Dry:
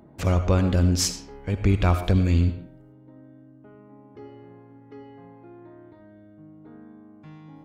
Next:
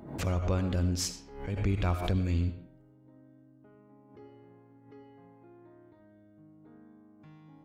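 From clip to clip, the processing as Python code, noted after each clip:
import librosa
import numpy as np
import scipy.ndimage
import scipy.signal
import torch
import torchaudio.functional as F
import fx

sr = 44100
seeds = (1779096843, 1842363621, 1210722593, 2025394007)

y = fx.pre_swell(x, sr, db_per_s=84.0)
y = y * 10.0 ** (-9.0 / 20.0)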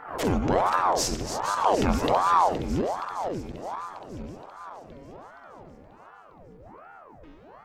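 y = fx.reverse_delay_fb(x, sr, ms=235, feedback_pct=79, wet_db=-9.0)
y = fx.ring_lfo(y, sr, carrier_hz=620.0, swing_pct=80, hz=1.3)
y = y * 10.0 ** (8.0 / 20.0)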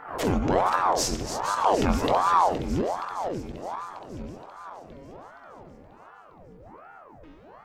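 y = fx.doubler(x, sr, ms=22.0, db=-13.0)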